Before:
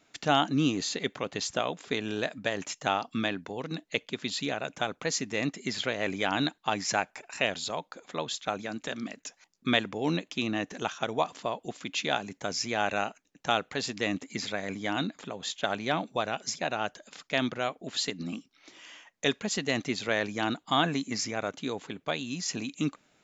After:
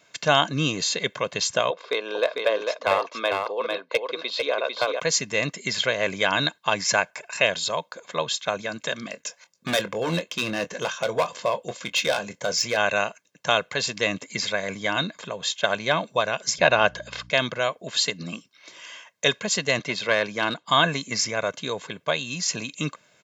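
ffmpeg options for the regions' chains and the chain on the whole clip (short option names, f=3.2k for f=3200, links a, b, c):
-filter_complex "[0:a]asettb=1/sr,asplit=3[a][b][c];[a]atrim=end=1.704[d];[b]atrim=start=1.7:end=5,asetpts=PTS-STARTPTS,afade=t=in:d=0.004:c=qsin,afade=t=out:st=3.296:d=0.004:c=qsin,highpass=f=330:w=0.5412,highpass=f=330:w=1.3066,equalizer=f=500:t=q:w=4:g=6,equalizer=f=1.1k:t=q:w=4:g=5,equalizer=f=1.8k:t=q:w=4:g=-7,equalizer=f=3k:t=q:w=4:g=-6,lowpass=f=4.4k:w=0.5412,lowpass=f=4.4k:w=1.3066,aeval=exprs='clip(val(0),-1,0.0944)':c=same,aecho=1:1:449:0.596,atrim=end_sample=145530[e];[c]atrim=start=4.996[f];[d][e]acrossfade=d=0.004:c1=hsin:c2=qsin[g];[g][f]acrossfade=d=0.004:c1=qsin:c2=hsin,asettb=1/sr,asplit=3[h][i][j];[h]atrim=end=9.114[k];[i]atrim=start=9.11:end=12.77,asetpts=PTS-STARTPTS,afade=t=in:d=0.004:c=qsin,afade=t=out:st=3.656:d=0.004:c=qsin,asoftclip=type=hard:threshold=-24.5dB,equalizer=f=520:w=6.5:g=6.5,asplit=2[l][m];[m]adelay=24,volume=-11.5dB[n];[l][n]amix=inputs=2:normalize=0,atrim=end_sample=161406[o];[j]atrim=start=12.766[p];[k][o]acrossfade=d=0.004:c1=hsin:c2=qsin[q];[q][p]acrossfade=d=0.004:c1=qsin:c2=hsin,asettb=1/sr,asplit=3[r][s][t];[r]atrim=end=16.584[u];[s]atrim=start=16.58:end=17.3,asetpts=PTS-STARTPTS,afade=t=in:d=0.004:c=qsin,afade=t=out:st=0.716:d=0.004:c=qsin,lowpass=4.5k,acontrast=68,aeval=exprs='val(0)+0.00447*(sin(2*PI*60*n/s)+sin(2*PI*2*60*n/s)/2+sin(2*PI*3*60*n/s)/3+sin(2*PI*4*60*n/s)/4+sin(2*PI*5*60*n/s)/5)':c=same[v];[t]atrim=start=17.296[w];[u][v]acrossfade=d=0.004:c1=hsin:c2=qsin[x];[x][w]acrossfade=d=0.004:c1=qsin:c2=hsin,asettb=1/sr,asplit=3[y][z][aa];[y]atrim=end=19.794[ab];[z]atrim=start=19.79:end=20.66,asetpts=PTS-STARTPTS,afade=t=in:d=0.004:c=qsin,afade=t=out:st=0.866:d=0.004:c=qsin,aeval=exprs='clip(val(0),-1,0.0562)':c=same,highpass=130,lowpass=5.4k[ac];[aa]atrim=start=20.656[ad];[ab][ac]acrossfade=d=0.004:c1=hsin:c2=qsin[ae];[ae][ad]acrossfade=d=0.004:c1=qsin:c2=hsin,highpass=130,equalizer=f=390:t=o:w=0.78:g=-5.5,aecho=1:1:1.9:0.61,volume=6.5dB"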